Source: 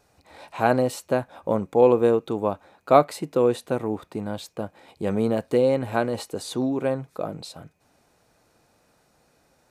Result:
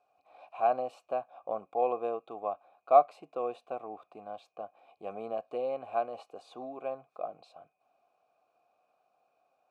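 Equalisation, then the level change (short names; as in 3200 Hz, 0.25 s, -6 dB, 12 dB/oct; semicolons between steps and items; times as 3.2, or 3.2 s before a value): vowel filter a; 0.0 dB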